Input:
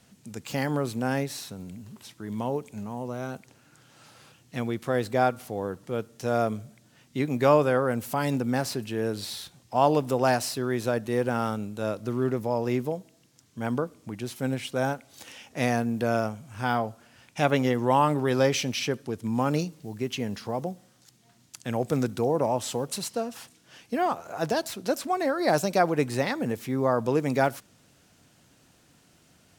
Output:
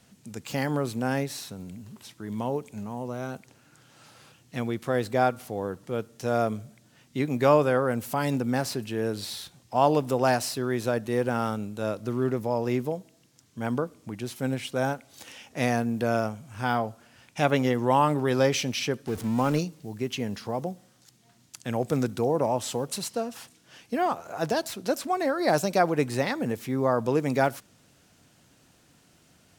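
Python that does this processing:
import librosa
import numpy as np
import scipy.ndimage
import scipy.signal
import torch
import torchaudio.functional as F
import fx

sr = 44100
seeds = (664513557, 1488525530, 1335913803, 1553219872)

y = fx.zero_step(x, sr, step_db=-35.0, at=(19.07, 19.59))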